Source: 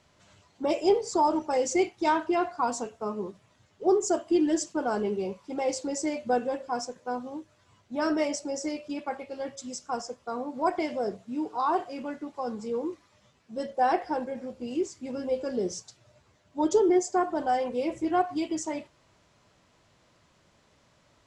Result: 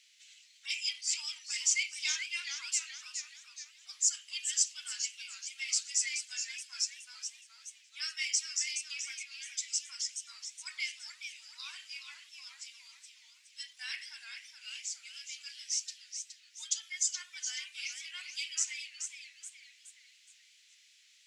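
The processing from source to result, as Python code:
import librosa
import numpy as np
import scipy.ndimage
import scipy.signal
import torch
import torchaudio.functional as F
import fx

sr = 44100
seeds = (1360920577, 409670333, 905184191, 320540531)

y = scipy.signal.sosfilt(scipy.signal.butter(6, 2200.0, 'highpass', fs=sr, output='sos'), x)
y = fx.echo_warbled(y, sr, ms=423, feedback_pct=44, rate_hz=2.8, cents=157, wet_db=-7.5)
y = y * 10.0 ** (6.5 / 20.0)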